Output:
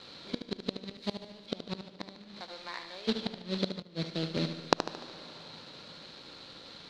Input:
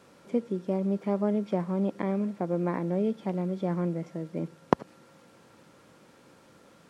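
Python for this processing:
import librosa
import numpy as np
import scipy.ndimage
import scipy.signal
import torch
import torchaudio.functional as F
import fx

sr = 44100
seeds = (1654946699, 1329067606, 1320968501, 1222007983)

y = fx.crossing_spikes(x, sr, level_db=-22.5, at=(0.95, 1.46))
y = fx.highpass(y, sr, hz=1500.0, slope=12, at=(2.39, 3.07), fade=0.02)
y = fx.quant_companded(y, sr, bits=4)
y = fx.lowpass_res(y, sr, hz=4100.0, q=8.2)
y = fx.gate_flip(y, sr, shuts_db=-15.0, range_db=-26)
y = fx.echo_feedback(y, sr, ms=74, feedback_pct=47, wet_db=-9.0)
y = fx.rev_freeverb(y, sr, rt60_s=4.5, hf_ratio=0.85, predelay_ms=20, drr_db=16.0)
y = fx.band_widen(y, sr, depth_pct=70, at=(3.82, 4.37))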